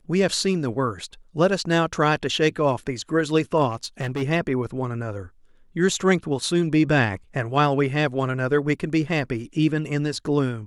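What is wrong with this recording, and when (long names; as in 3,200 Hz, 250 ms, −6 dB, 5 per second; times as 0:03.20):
0:03.69–0:04.23: clipping −22.5 dBFS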